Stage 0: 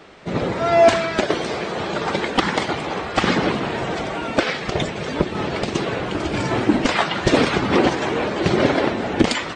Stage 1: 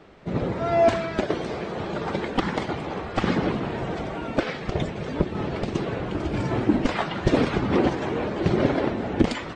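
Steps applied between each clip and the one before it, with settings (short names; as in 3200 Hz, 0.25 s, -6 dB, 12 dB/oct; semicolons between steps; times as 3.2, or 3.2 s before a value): tilt -2 dB/oct; gain -7 dB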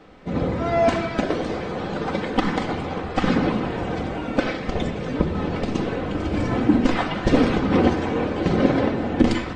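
shoebox room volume 3800 m³, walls furnished, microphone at 2 m; gain +1 dB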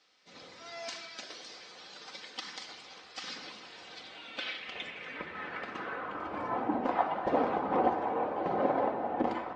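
band-pass sweep 5200 Hz -> 810 Hz, 3.68–6.78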